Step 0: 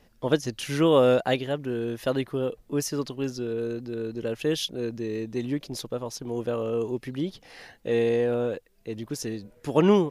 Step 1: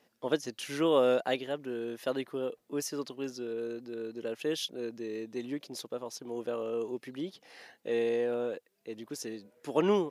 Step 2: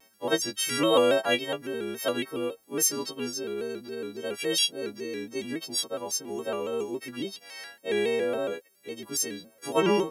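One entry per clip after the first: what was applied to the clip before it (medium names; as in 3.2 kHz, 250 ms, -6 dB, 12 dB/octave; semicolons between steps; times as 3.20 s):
high-pass 250 Hz 12 dB/octave; trim -5.5 dB
partials quantised in pitch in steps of 3 st; vibrato with a chosen wave square 3.6 Hz, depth 100 cents; trim +3.5 dB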